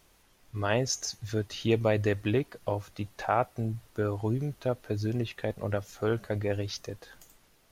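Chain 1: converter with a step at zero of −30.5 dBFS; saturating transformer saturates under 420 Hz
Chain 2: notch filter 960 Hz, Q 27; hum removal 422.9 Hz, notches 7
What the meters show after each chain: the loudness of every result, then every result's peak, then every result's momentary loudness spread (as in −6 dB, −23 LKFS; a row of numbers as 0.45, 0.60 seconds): −30.5, −31.0 LKFS; −12.5, −11.0 dBFS; 9, 8 LU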